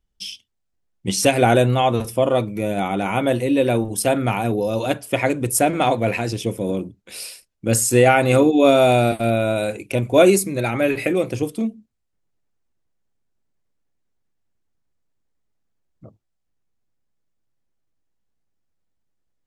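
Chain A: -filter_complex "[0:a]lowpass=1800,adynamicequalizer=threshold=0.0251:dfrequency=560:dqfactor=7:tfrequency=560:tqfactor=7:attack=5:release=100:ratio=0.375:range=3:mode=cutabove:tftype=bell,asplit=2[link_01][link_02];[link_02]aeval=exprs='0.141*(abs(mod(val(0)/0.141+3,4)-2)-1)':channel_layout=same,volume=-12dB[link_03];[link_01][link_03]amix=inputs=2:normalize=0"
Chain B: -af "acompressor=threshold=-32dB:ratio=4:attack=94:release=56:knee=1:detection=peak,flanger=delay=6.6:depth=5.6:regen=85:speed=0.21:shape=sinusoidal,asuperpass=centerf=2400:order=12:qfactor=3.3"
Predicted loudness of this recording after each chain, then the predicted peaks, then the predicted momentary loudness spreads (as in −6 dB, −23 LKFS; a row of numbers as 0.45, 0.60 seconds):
−19.0, −43.5 LKFS; −2.5, −21.0 dBFS; 9, 15 LU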